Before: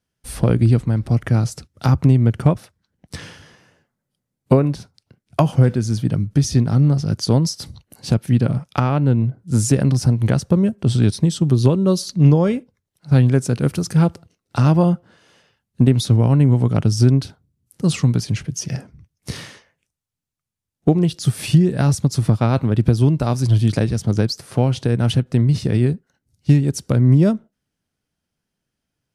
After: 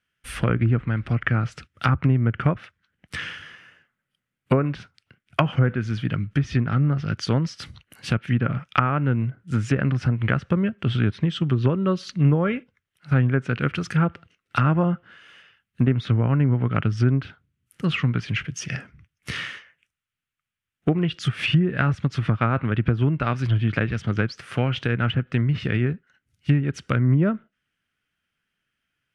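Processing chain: high-order bell 2 kHz +14.5 dB; low-pass that closes with the level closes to 1.3 kHz, closed at -9.5 dBFS; trim -6 dB

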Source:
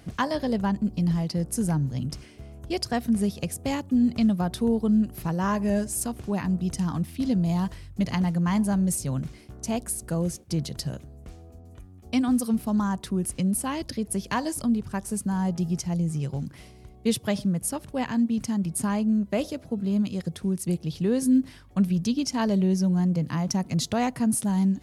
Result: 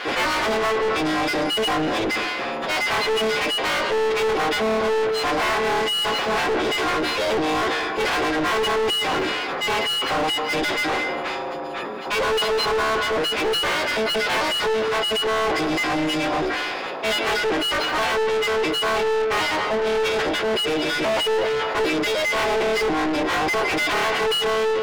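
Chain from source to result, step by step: partials quantised in pitch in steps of 6 st; hum notches 50/100/150/200/250/300/350/400/450 Hz; full-wave rectifier; high-pass 310 Hz 12 dB/octave; distance through air 320 m; reverberation RT60 0.95 s, pre-delay 146 ms, DRR 16.5 dB; in parallel at -2.5 dB: compression, threshold -38 dBFS, peak gain reduction 13 dB; on the sum: overdrive pedal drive 34 dB, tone 3.5 kHz, clips at -15 dBFS; decay stretcher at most 20 dB/s

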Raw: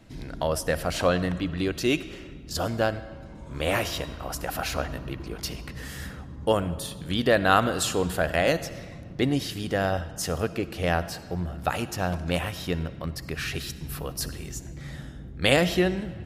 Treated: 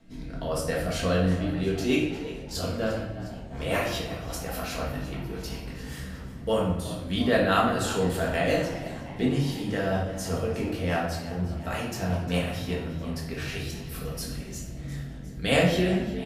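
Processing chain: rotary cabinet horn 5 Hz; on a send: frequency-shifting echo 355 ms, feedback 60%, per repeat +79 Hz, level -15.5 dB; on the sum: simulated room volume 210 m³, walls mixed, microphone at 1.6 m; trim -5 dB

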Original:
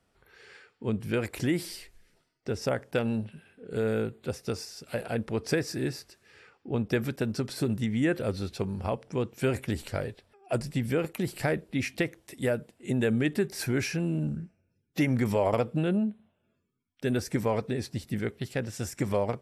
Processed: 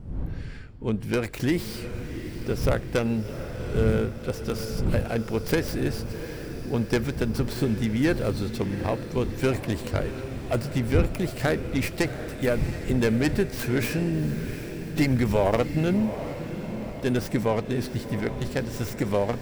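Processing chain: tracing distortion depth 0.23 ms; wind noise 120 Hz -37 dBFS; echo that smears into a reverb 736 ms, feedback 61%, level -10.5 dB; trim +3 dB

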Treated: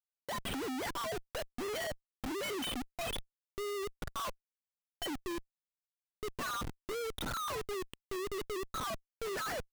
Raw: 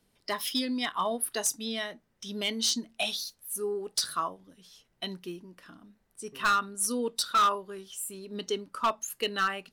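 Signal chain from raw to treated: formants replaced by sine waves; low-pass that closes with the level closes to 1.2 kHz, closed at -23.5 dBFS; Schmitt trigger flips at -43 dBFS; trim -3.5 dB

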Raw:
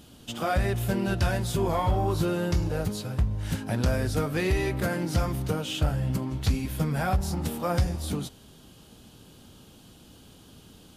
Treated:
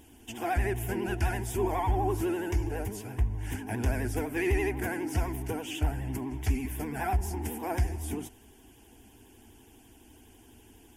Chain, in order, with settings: static phaser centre 830 Hz, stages 8; vibrato 12 Hz 97 cents

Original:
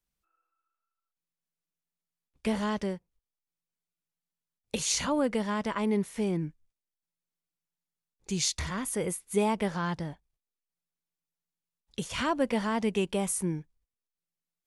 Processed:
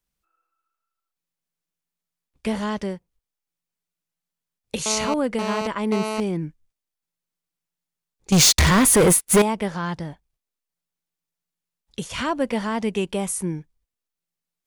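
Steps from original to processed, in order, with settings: 4.86–6.20 s: mobile phone buzz -31 dBFS; 8.32–9.42 s: waveshaping leveller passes 5; trim +4 dB

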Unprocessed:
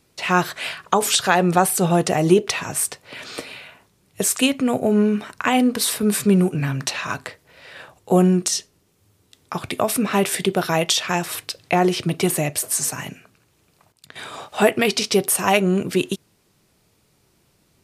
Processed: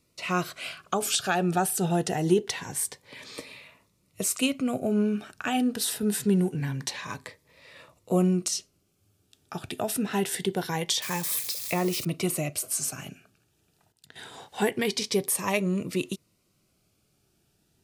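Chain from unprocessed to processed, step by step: 11.02–12.05 s: zero-crossing glitches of -19 dBFS; Shepard-style phaser rising 0.25 Hz; trim -7 dB

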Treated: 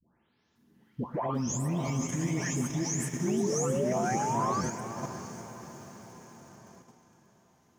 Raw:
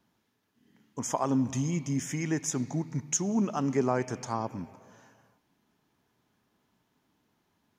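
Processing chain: delay that grows with frequency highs late, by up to 558 ms; peaking EQ 78 Hz +7 dB 0.79 oct; peak limiter -28 dBFS, peak gain reduction 11 dB; on a send: echo that smears into a reverb 601 ms, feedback 47%, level -5.5 dB; on the sum: painted sound rise, 3.25–4.61 s, 340–1200 Hz -35 dBFS; in parallel at +1 dB: level held to a coarse grid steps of 20 dB; on the sum: bit-crushed delay 357 ms, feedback 55%, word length 8-bit, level -13.5 dB

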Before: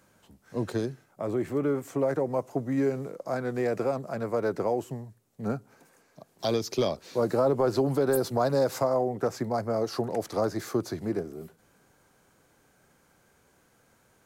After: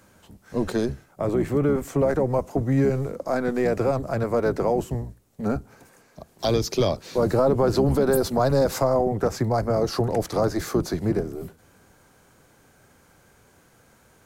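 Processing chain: octave divider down 1 oct, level -3 dB; in parallel at +1 dB: peak limiter -21.5 dBFS, peak gain reduction 7.5 dB

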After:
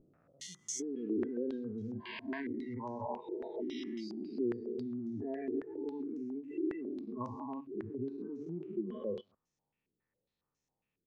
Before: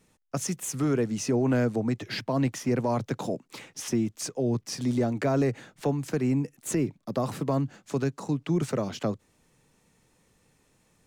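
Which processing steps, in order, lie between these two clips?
spectrogram pixelated in time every 400 ms; delay 138 ms -13 dB; compression 10:1, threshold -40 dBFS, peak gain reduction 16 dB; 0.84–2.69 s: short-mantissa float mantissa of 2-bit; spectral noise reduction 28 dB; step-sequenced low-pass 7.3 Hz 360–6000 Hz; trim +4.5 dB

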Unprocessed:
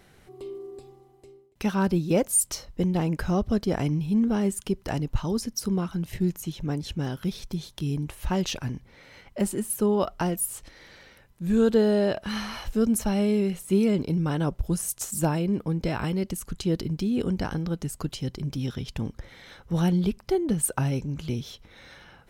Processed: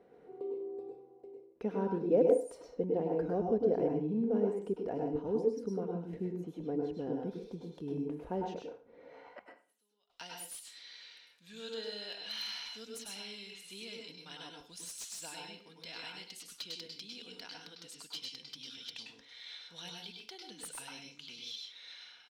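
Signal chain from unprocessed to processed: 7.24–8.06 s: treble shelf 7.1 kHz +8 dB; comb 4.2 ms, depth 37%; dynamic bell 1.2 kHz, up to -6 dB, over -54 dBFS, Q 5.2; in parallel at -2 dB: compression, threshold -38 dBFS, peak gain reduction 22 dB; 8.56–10.10 s: on the sum: inverted gate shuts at -22 dBFS, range -33 dB; band-pass sweep 460 Hz -> 3.8 kHz, 9.01–9.72 s; reverberation RT60 0.40 s, pre-delay 97 ms, DRR 0.5 dB; slew-rate limiter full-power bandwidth 90 Hz; trim -2.5 dB

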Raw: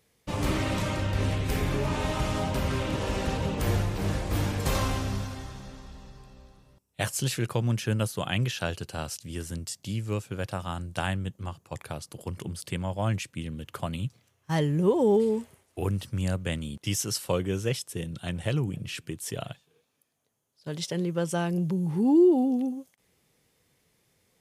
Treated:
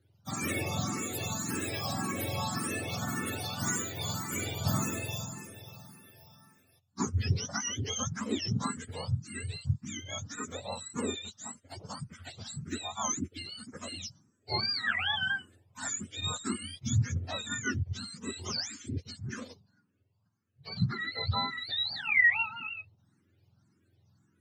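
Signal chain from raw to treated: spectrum inverted on a logarithmic axis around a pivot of 830 Hz; barber-pole phaser +1.8 Hz

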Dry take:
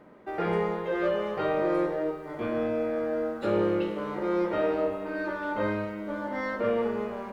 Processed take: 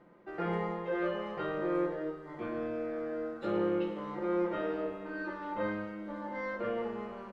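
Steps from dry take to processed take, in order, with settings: distance through air 54 m; comb 5.8 ms, depth 58%; trim -7.5 dB

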